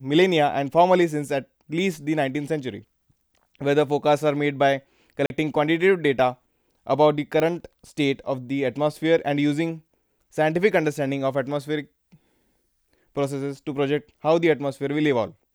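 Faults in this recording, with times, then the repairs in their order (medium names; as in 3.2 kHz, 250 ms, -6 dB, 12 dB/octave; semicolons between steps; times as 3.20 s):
5.26–5.30 s: dropout 41 ms
7.40 s: pop -12 dBFS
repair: de-click; interpolate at 5.26 s, 41 ms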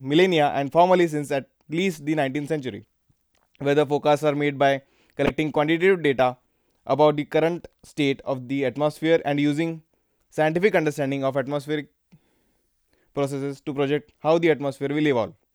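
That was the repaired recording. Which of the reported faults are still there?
nothing left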